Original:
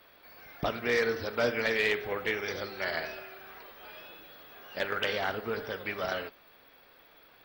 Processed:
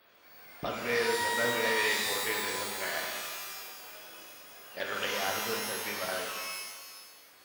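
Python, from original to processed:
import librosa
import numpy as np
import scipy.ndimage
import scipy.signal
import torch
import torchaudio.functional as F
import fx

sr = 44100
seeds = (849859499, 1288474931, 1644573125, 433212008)

y = fx.low_shelf(x, sr, hz=90.0, db=-10.5)
y = fx.rev_shimmer(y, sr, seeds[0], rt60_s=1.4, semitones=12, shimmer_db=-2, drr_db=0.5)
y = F.gain(torch.from_numpy(y), -4.5).numpy()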